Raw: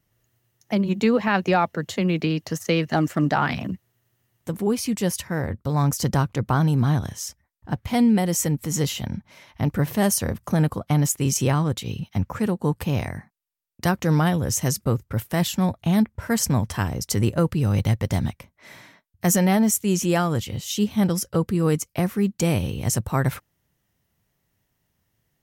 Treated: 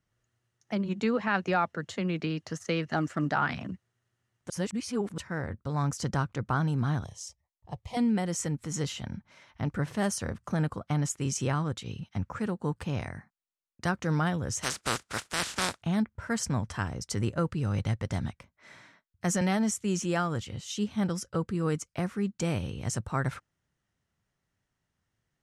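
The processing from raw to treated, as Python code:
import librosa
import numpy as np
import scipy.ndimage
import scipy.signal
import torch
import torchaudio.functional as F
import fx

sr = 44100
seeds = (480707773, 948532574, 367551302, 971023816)

y = fx.fixed_phaser(x, sr, hz=620.0, stages=4, at=(7.04, 7.97))
y = fx.spec_flatten(y, sr, power=0.25, at=(14.62, 15.81), fade=0.02)
y = fx.band_squash(y, sr, depth_pct=40, at=(19.41, 20.03))
y = fx.edit(y, sr, fx.reverse_span(start_s=4.5, length_s=0.68), tone=tone)
y = scipy.signal.sosfilt(scipy.signal.butter(4, 9000.0, 'lowpass', fs=sr, output='sos'), y)
y = fx.peak_eq(y, sr, hz=1400.0, db=6.0, octaves=0.62)
y = F.gain(torch.from_numpy(y), -8.5).numpy()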